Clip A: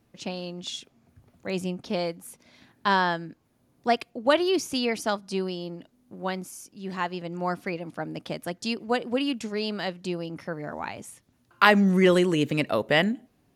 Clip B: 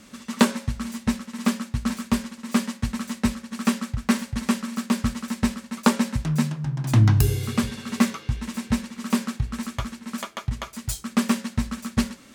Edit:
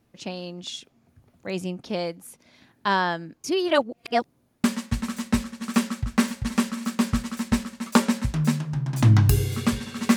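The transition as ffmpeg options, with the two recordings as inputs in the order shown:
-filter_complex "[0:a]apad=whole_dur=10.16,atrim=end=10.16,asplit=2[a][b];[a]atrim=end=3.442[c];[b]atrim=start=3.438:end=4.642,asetpts=PTS-STARTPTS,areverse[d];[1:a]atrim=start=2.548:end=8.07[e];[c][d]acrossfade=d=0.004:c1=hsin:c2=hsin[f];[f][e]acrossfade=d=0.004:c1=hsin:c2=hsin"

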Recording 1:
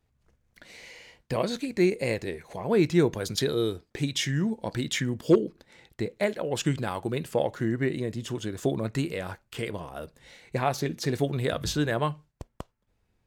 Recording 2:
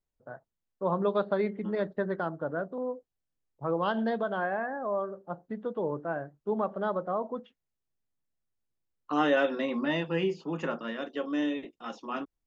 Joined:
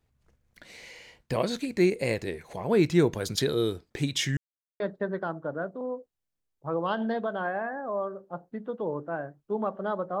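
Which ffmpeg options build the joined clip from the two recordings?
-filter_complex "[0:a]apad=whole_dur=10.2,atrim=end=10.2,asplit=2[a][b];[a]atrim=end=4.37,asetpts=PTS-STARTPTS,afade=t=out:st=4.366:d=0.004:c=hsin[c];[b]atrim=start=4.37:end=4.8,asetpts=PTS-STARTPTS,volume=0[d];[1:a]atrim=start=1.77:end=7.17,asetpts=PTS-STARTPTS,afade=t=in:d=0.004:c=hsin[e];[c][d][e]concat=n=3:v=0:a=1"

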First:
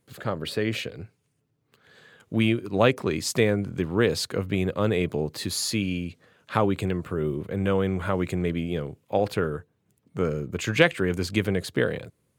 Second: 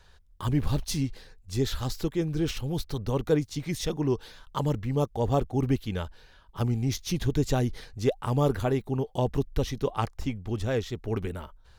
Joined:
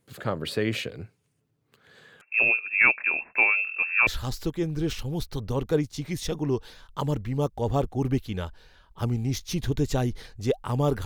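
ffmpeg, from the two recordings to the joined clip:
-filter_complex "[0:a]asettb=1/sr,asplit=3[a][b][c];[a]atrim=end=2.214[d];[b]atrim=start=2.21:end=4.07,asetpts=PTS-STARTPTS,afade=t=in:d=0.004:c=qsin,afade=t=out:st=1.856:d=0.004:c=qsin,lowpass=f=2.4k:t=q:w=0.5098,lowpass=f=2.4k:t=q:w=0.6013,lowpass=f=2.4k:t=q:w=0.9,lowpass=f=2.4k:t=q:w=2.563,afreqshift=-2800[e];[c]atrim=start=4.066[f];[d][e]acrossfade=d=0.004:c1=hsin:c2=qsin[g];[g][f]acrossfade=d=0.004:c1=qsin:c2=hsin,apad=whole_dur=11.05,atrim=end=11.05,atrim=end=4.072[h];[1:a]atrim=start=1.648:end=8.63[i];[h][i]acrossfade=d=0.004:c1=hsin:c2=hsin"

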